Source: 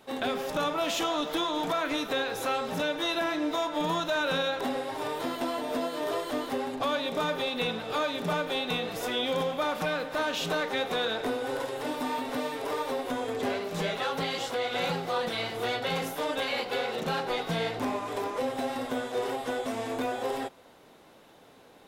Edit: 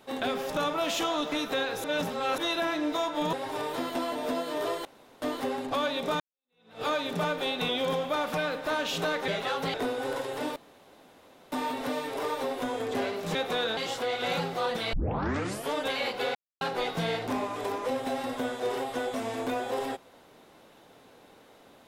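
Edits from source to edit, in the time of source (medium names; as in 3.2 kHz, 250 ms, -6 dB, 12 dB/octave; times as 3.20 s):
1.32–1.91 s: delete
2.43–2.97 s: reverse
3.92–4.79 s: delete
6.31 s: insert room tone 0.37 s
7.29–7.91 s: fade in exponential
8.78–9.17 s: delete
10.76–11.18 s: swap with 13.83–14.29 s
12.00 s: insert room tone 0.96 s
15.45 s: tape start 0.80 s
16.87–17.13 s: mute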